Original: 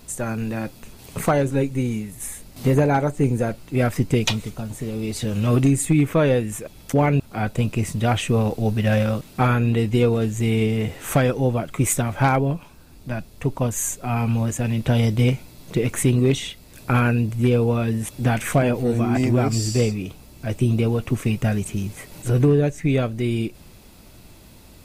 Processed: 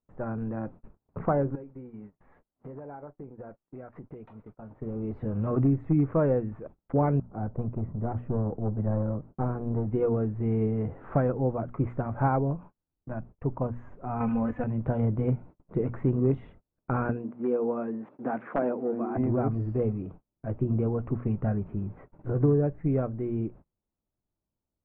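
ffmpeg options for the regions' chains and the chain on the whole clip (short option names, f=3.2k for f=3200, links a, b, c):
-filter_complex "[0:a]asettb=1/sr,asplit=3[a][b][c];[a]atrim=end=1.554[d];[b]atrim=start=1.55:end=4.82,asetpts=PTS-STARTPTS,afade=t=in:d=0.004:c=qsin,afade=t=out:st=3.266:d=0.004:c=qsin,lowshelf=f=240:g=-11.5,acompressor=threshold=-31dB:ratio=20:attack=3.2:release=140:knee=1:detection=peak[e];[c]atrim=start=4.816[f];[d][e]acrossfade=d=0.004:c1=hsin:c2=qsin[g];[g][f]acrossfade=d=0.004:c1=qsin:c2=hsin,asettb=1/sr,asplit=3[h][i][j];[h]atrim=end=7.224[k];[i]atrim=start=7.22:end=9.87,asetpts=PTS-STARTPTS,afade=t=in:d=0.004:c=qsin,afade=t=out:st=2.646:d=0.004:c=qsin,aeval=exprs='clip(val(0),-1,0.0841)':c=same,equalizer=f=3.3k:w=0.5:g=-13.5[l];[j]atrim=start=9.866[m];[k][l]acrossfade=d=0.004:c1=hsin:c2=qsin[n];[n][m]acrossfade=d=0.004:c1=qsin:c2=hsin,asettb=1/sr,asplit=3[o][p][q];[o]atrim=end=14.204[r];[p]atrim=start=14.2:end=14.64,asetpts=PTS-STARTPTS,afade=t=in:d=0.004:c=qsin,afade=t=out:st=0.436:d=0.004:c=qsin,equalizer=f=2.4k:t=o:w=1.6:g=10.5,aecho=1:1:4:0.78,atrim=end_sample=19404[s];[q]atrim=start=14.636[t];[r][s]acrossfade=d=0.004:c1=hsin:c2=qsin[u];[u][t]acrossfade=d=0.004:c1=qsin:c2=hsin,asettb=1/sr,asplit=3[v][w][x];[v]atrim=end=17.094[y];[w]atrim=start=17.09:end=19.16,asetpts=PTS-STARTPTS,afade=t=in:d=0.004:c=qsin,afade=t=out:st=2.066:d=0.004:c=qsin,highpass=f=220:w=0.5412,highpass=f=220:w=1.3066,aeval=exprs='(mod(2.51*val(0)+1,2)-1)/2.51':c=same[z];[x]atrim=start=19.156[aa];[y][z]acrossfade=d=0.004:c1=hsin:c2=qsin[ab];[ab][aa]acrossfade=d=0.004:c1=qsin:c2=hsin,bandreject=f=60:t=h:w=6,bandreject=f=120:t=h:w=6,bandreject=f=180:t=h:w=6,bandreject=f=240:t=h:w=6,agate=range=-34dB:threshold=-38dB:ratio=16:detection=peak,lowpass=f=1.3k:w=0.5412,lowpass=f=1.3k:w=1.3066,volume=-6dB"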